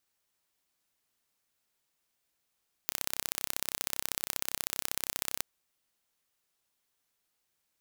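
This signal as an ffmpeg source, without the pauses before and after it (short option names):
-f lavfi -i "aevalsrc='0.708*eq(mod(n,1353),0)*(0.5+0.5*eq(mod(n,2706),0))':d=2.54:s=44100"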